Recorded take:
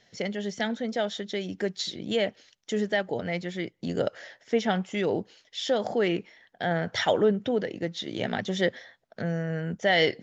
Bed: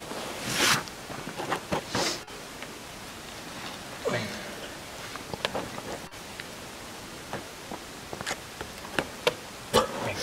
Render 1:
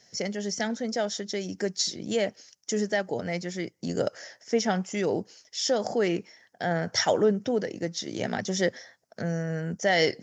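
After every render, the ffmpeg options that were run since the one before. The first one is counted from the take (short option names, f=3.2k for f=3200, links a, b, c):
-af "highpass=71,highshelf=f=4.4k:t=q:w=3:g=6.5"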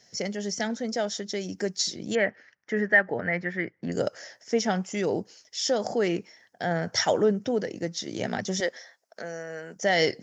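-filter_complex "[0:a]asettb=1/sr,asplit=3[a][b][c];[a]atrim=end=2.154[d];[b]atrim=start=2.15:end=3.92,asetpts=PTS-STARTPTS,afade=t=in:d=0.004:c=qsin,afade=t=out:st=1.766:d=0.004:c=qsin,lowpass=f=1.8k:t=q:w=4.7[e];[c]atrim=start=3.916[f];[d][e]acrossfade=d=0.004:c1=hsin:c2=qsin[g];[g][f]acrossfade=d=0.004:c1=qsin:c2=hsin,asettb=1/sr,asplit=3[h][i][j];[h]atrim=end=8.604[k];[i]atrim=start=8.6:end=9.76,asetpts=PTS-STARTPTS,afade=t=in:d=0.004:c=qsin,afade=t=out:st=1.156:d=0.004:c=qsin,highpass=460[l];[j]atrim=start=9.756[m];[k][l]acrossfade=d=0.004:c1=hsin:c2=qsin[n];[n][m]acrossfade=d=0.004:c1=qsin:c2=hsin"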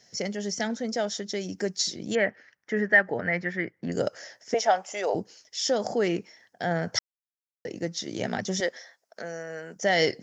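-filter_complex "[0:a]asettb=1/sr,asplit=3[a][b][c];[a]atrim=end=2.934[d];[b]atrim=start=2.93:end=3.56,asetpts=PTS-STARTPTS,afade=t=in:d=0.004:c=qsin,afade=t=out:st=0.626:d=0.004:c=qsin,equalizer=f=6.1k:t=o:w=1.7:g=4.5[e];[c]atrim=start=3.556[f];[d][e]acrossfade=d=0.004:c1=hsin:c2=qsin[g];[g][f]acrossfade=d=0.004:c1=qsin:c2=hsin,asettb=1/sr,asplit=3[h][i][j];[h]atrim=end=4.544[k];[i]atrim=start=4.54:end=5.15,asetpts=PTS-STARTPTS,afade=t=in:d=0.004:c=qsin,afade=t=out:st=0.606:d=0.004:c=qsin,highpass=f=660:t=q:w=2.8[l];[j]atrim=start=5.146[m];[k][l]acrossfade=d=0.004:c1=hsin:c2=qsin[n];[n][m]acrossfade=d=0.004:c1=qsin:c2=hsin,asplit=3[o][p][q];[o]atrim=end=6.99,asetpts=PTS-STARTPTS,afade=t=out:st=6.986:d=0.004:c=hsin[r];[p]atrim=start=6.99:end=7.65,asetpts=PTS-STARTPTS,volume=0[s];[q]atrim=start=7.65,asetpts=PTS-STARTPTS,afade=t=in:d=0.004:c=hsin[t];[r][s][t]concat=n=3:v=0:a=1"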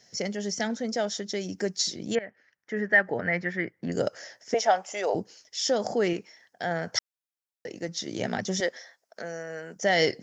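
-filter_complex "[0:a]asettb=1/sr,asplit=3[a][b][c];[a]atrim=end=6.134[d];[b]atrim=start=6.13:end=7.89,asetpts=PTS-STARTPTS,afade=t=in:d=0.004:c=qsin,afade=t=out:st=1.756:d=0.004:c=qsin,lowshelf=f=360:g=-6.5[e];[c]atrim=start=7.886[f];[d][e]acrossfade=d=0.004:c1=hsin:c2=qsin[g];[g][f]acrossfade=d=0.004:c1=qsin:c2=hsin,asplit=2[h][i];[h]atrim=end=2.19,asetpts=PTS-STARTPTS,afade=t=out:st=2.186:d=0.004:c=hsin:silence=0.11885[j];[i]atrim=start=2.19,asetpts=PTS-STARTPTS,afade=t=in:d=0.92:silence=0.11885[k];[j][k]concat=n=2:v=0:a=1"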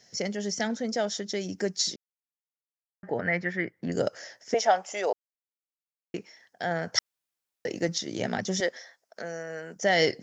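-filter_complex "[0:a]asettb=1/sr,asplit=3[a][b][c];[a]atrim=end=6.984[d];[b]atrim=start=6.98:end=7.98,asetpts=PTS-STARTPTS,afade=t=in:d=0.004:c=qsin,afade=t=out:st=0.996:d=0.004:c=qsin,acontrast=53[e];[c]atrim=start=7.976[f];[d][e]acrossfade=d=0.004:c1=hsin:c2=qsin[g];[g][f]acrossfade=d=0.004:c1=qsin:c2=hsin,asplit=5[h][i][j][k][l];[h]atrim=end=1.96,asetpts=PTS-STARTPTS,afade=t=out:st=1.956:d=0.004:c=hsin[m];[i]atrim=start=1.96:end=3.03,asetpts=PTS-STARTPTS,volume=0[n];[j]atrim=start=3.03:end=5.13,asetpts=PTS-STARTPTS,afade=t=in:d=0.004:c=hsin,afade=t=out:st=2.096:d=0.004:c=hsin[o];[k]atrim=start=5.13:end=6.14,asetpts=PTS-STARTPTS,volume=0[p];[l]atrim=start=6.14,asetpts=PTS-STARTPTS,afade=t=in:d=0.004:c=hsin[q];[m][n][o][p][q]concat=n=5:v=0:a=1"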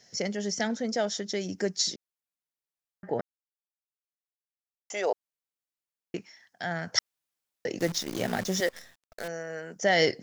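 -filter_complex "[0:a]asettb=1/sr,asplit=3[a][b][c];[a]atrim=end=6.184[d];[b]atrim=start=6.18:end=6.89,asetpts=PTS-STARTPTS,afade=t=in:d=0.004:c=qsin,afade=t=out:st=0.706:d=0.004:c=qsin,equalizer=f=470:w=1.5:g=-10.5[e];[c]atrim=start=6.886[f];[d][e]acrossfade=d=0.004:c1=hsin:c2=qsin[g];[g][f]acrossfade=d=0.004:c1=qsin:c2=hsin,asettb=1/sr,asplit=3[h][i][j];[h]atrim=end=7.794[k];[i]atrim=start=7.79:end=9.28,asetpts=PTS-STARTPTS,afade=t=in:d=0.004:c=qsin,afade=t=out:st=1.486:d=0.004:c=qsin,acrusher=bits=7:dc=4:mix=0:aa=0.000001[l];[j]atrim=start=9.276[m];[k][l]acrossfade=d=0.004:c1=hsin:c2=qsin[n];[n][m]acrossfade=d=0.004:c1=qsin:c2=hsin,asplit=3[o][p][q];[o]atrim=end=3.21,asetpts=PTS-STARTPTS,afade=t=out:st=3.206:d=0.004:c=hsin[r];[p]atrim=start=3.21:end=4.9,asetpts=PTS-STARTPTS,volume=0[s];[q]atrim=start=4.9,asetpts=PTS-STARTPTS,afade=t=in:d=0.004:c=hsin[t];[r][s][t]concat=n=3:v=0:a=1"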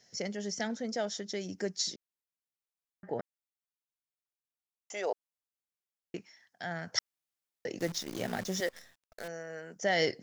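-af "volume=-5.5dB"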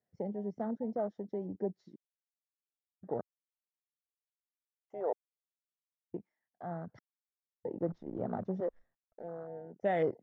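-af "lowpass=1.1k,afwtdn=0.00891"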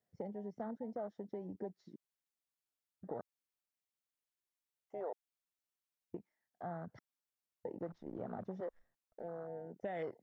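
-filter_complex "[0:a]acrossover=split=800[a][b];[a]acompressor=threshold=-42dB:ratio=6[c];[b]alimiter=level_in=17.5dB:limit=-24dB:level=0:latency=1:release=18,volume=-17.5dB[d];[c][d]amix=inputs=2:normalize=0"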